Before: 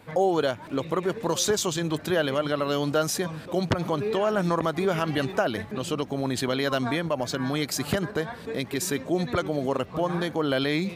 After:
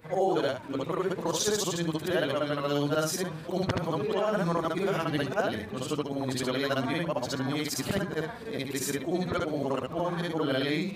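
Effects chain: short-time spectra conjugated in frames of 153 ms

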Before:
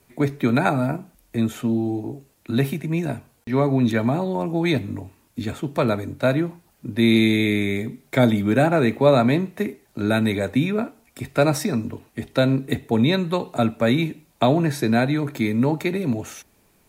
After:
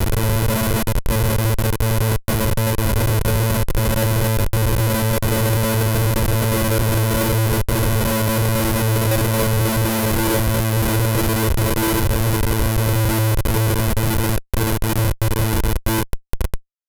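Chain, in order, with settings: local Wiener filter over 9 samples; gain riding within 3 dB 2 s; robot voice 111 Hz; treble shelf 3.4 kHz +11.5 dB; de-hum 146 Hz, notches 10; peak limiter -9.5 dBFS, peak gain reduction 9 dB; FDN reverb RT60 1.3 s, low-frequency decay 1.3×, high-frequency decay 0.45×, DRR 7.5 dB; Paulstretch 35×, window 0.50 s, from 13.68 s; Schmitt trigger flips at -20 dBFS; peaking EQ 12 kHz +13 dB 0.63 oct; comb 2 ms, depth 44%; trim +5 dB

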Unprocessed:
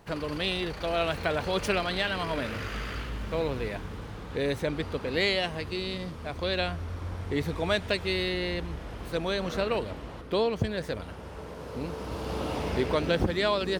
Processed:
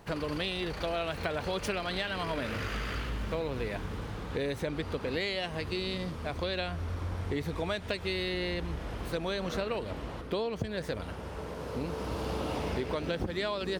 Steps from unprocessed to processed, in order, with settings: compression, threshold -31 dBFS, peak gain reduction 10 dB; trim +1.5 dB

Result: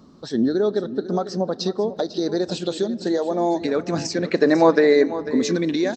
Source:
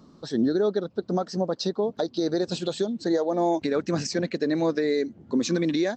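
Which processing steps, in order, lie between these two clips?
4.28–5.23 s: peaking EQ 940 Hz +12.5 dB 2.6 oct; delay 497 ms -13.5 dB; on a send at -18 dB: reverberation RT60 3.5 s, pre-delay 3 ms; on the sum: trim +2.5 dB

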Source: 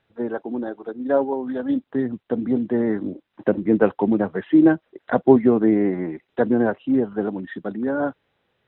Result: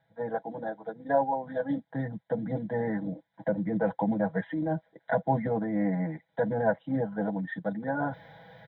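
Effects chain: high-pass 80 Hz; treble shelf 2.4 kHz -12 dB; comb 6.1 ms, depth 94%; peak limiter -12 dBFS, peak gain reduction 11.5 dB; reverse; upward compressor, threshold -29 dBFS; reverse; static phaser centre 1.8 kHz, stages 8

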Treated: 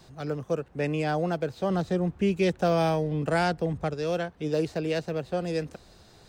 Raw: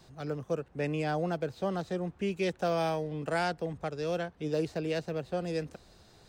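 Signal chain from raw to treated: 1.70–3.94 s: bass shelf 270 Hz +7 dB; trim +4 dB

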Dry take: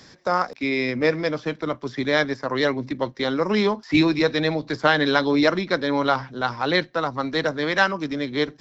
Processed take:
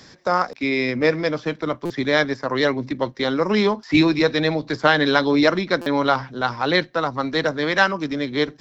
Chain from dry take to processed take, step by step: buffer glitch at 1.85/5.81 s, samples 256, times 8; trim +2 dB

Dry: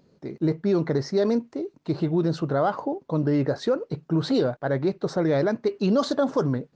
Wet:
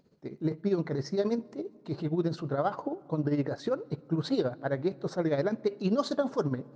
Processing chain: tremolo 15 Hz, depth 65%; on a send: reverberation RT60 2.5 s, pre-delay 5 ms, DRR 22 dB; on the sum: trim -3.5 dB

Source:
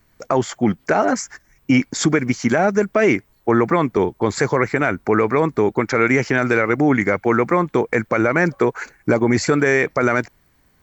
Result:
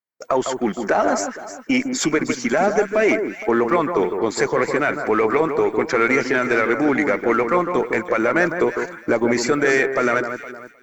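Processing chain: coarse spectral quantiser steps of 15 dB; high-pass 290 Hz 12 dB/octave; in parallel at -9 dB: one-sided clip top -23.5 dBFS; on the sum: echo whose repeats swap between lows and highs 155 ms, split 1.6 kHz, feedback 55%, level -6.5 dB; expander -34 dBFS; trim -2 dB

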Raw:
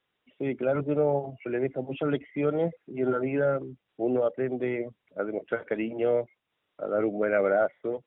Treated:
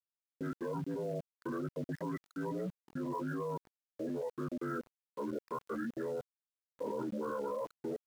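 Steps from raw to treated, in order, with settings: frequency axis rescaled in octaves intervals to 80%; reverb removal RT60 0.51 s; peaking EQ 380 Hz -9.5 dB 0.63 oct; level held to a coarse grid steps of 21 dB; small samples zeroed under -56 dBFS; trim +5 dB

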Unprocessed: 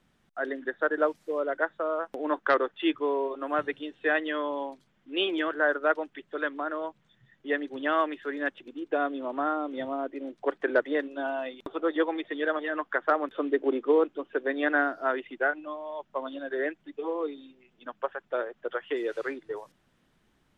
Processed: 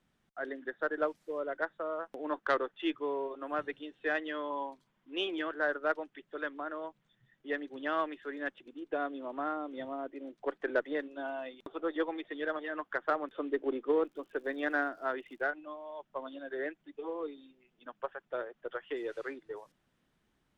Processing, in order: 14.04–15.42 s: crackle 110 per s -47 dBFS; Chebyshev shaper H 3 -23 dB, 8 -42 dB, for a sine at -10 dBFS; 4.50–5.22 s: peaking EQ 1 kHz +8.5 dB 0.31 oct; trim -5 dB

